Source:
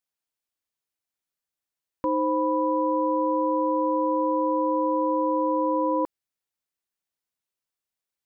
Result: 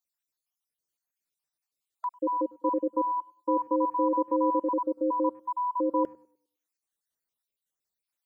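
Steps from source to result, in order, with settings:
time-frequency cells dropped at random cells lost 56%
bass and treble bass 0 dB, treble +5 dB
hum removal 76.35 Hz, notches 3
tape delay 101 ms, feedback 35%, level −21 dB, low-pass 1,100 Hz

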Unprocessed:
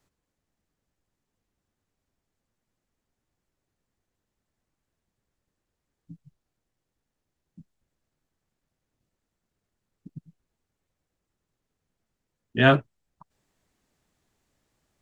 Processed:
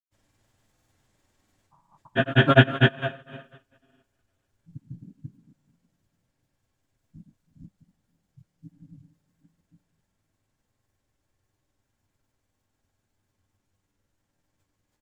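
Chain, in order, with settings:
played backwards from end to start
on a send: single-tap delay 410 ms −15 dB
on the sum: coupled-rooms reverb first 0.37 s, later 1.7 s, from −16 dB, DRR −7.5 dB
granular cloud, grains 20 per second, spray 439 ms, pitch spread up and down by 0 semitones
level −2.5 dB

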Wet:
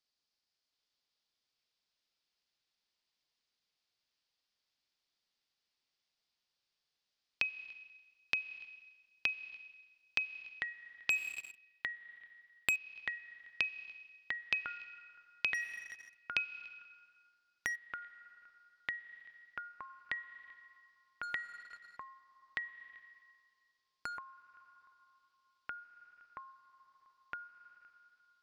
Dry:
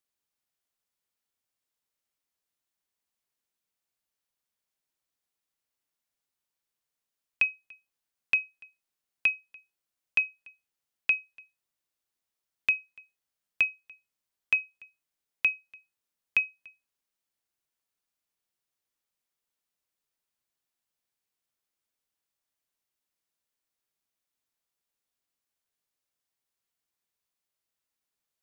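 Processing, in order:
low-pass with resonance 4,800 Hz, resonance Q 4
four-comb reverb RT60 1.3 s, combs from 30 ms, DRR 13 dB
0:11.10–0:12.76: leveller curve on the samples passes 3
downward compressor 6 to 1, threshold −29 dBFS, peak gain reduction 14 dB
delay with pitch and tempo change per echo 725 ms, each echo −5 semitones, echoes 3, each echo −6 dB
level −2.5 dB

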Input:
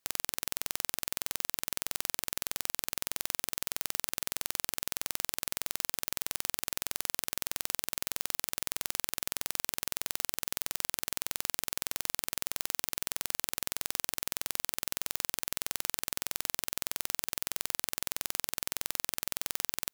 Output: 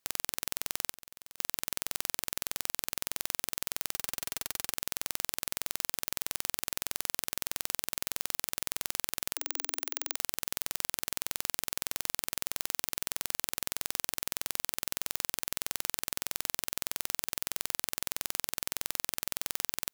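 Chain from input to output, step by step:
0:00.90–0:01.38: downward compressor 6 to 1, threshold −45 dBFS, peak gain reduction 17 dB
0:03.94–0:04.72: notch comb filter 390 Hz
0:09.34–0:10.16: frequency shifter +260 Hz

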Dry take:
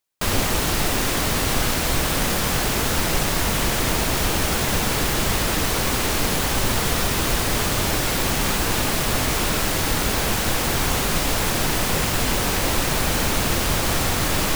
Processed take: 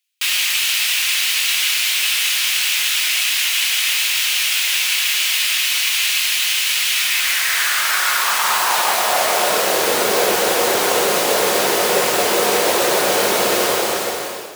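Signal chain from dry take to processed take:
fade-out on the ending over 0.94 s
parametric band 74 Hz +7 dB 1.6 octaves
coupled-rooms reverb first 0.27 s, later 3.8 s, from −18 dB, DRR 5 dB
high-pass filter sweep 2,600 Hz → 460 Hz, 0:06.91–0:09.88
level +3.5 dB

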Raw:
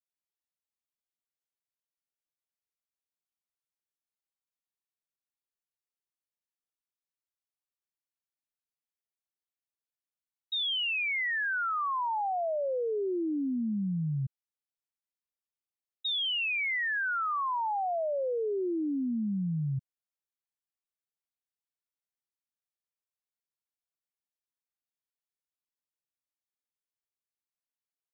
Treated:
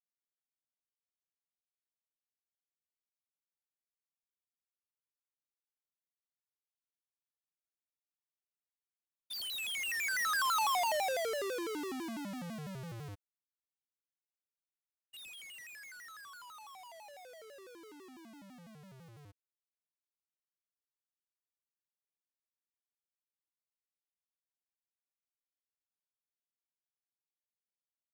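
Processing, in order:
each half-wave held at its own peak
source passing by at 0:10.61, 40 m/s, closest 18 metres
pitch modulation by a square or saw wave square 6 Hz, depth 250 cents
level −3 dB

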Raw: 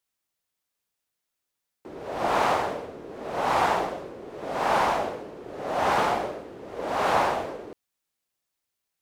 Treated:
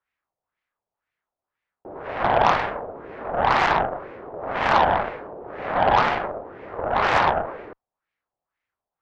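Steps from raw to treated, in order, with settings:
auto-filter low-pass sine 2 Hz 700–2,200 Hz
in parallel at −2 dB: downward compressor, threshold −31 dBFS, peak gain reduction 15.5 dB
on the sum: parametric band 240 Hz −5 dB 1.9 octaves
harmonic generator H 3 −16 dB, 6 −21 dB, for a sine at −6.5 dBFS
level +3.5 dB

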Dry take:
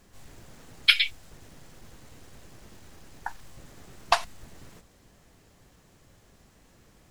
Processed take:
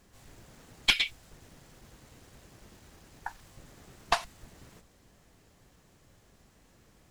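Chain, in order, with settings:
one-sided soft clipper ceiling −14.5 dBFS
level −3 dB

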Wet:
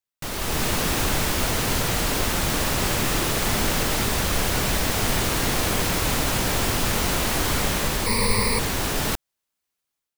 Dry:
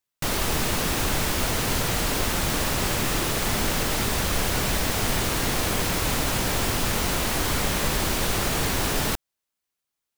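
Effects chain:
0:08.06–0:08.59: EQ curve with evenly spaced ripples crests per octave 0.91, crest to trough 18 dB
automatic gain control gain up to 8.5 dB
level −6 dB

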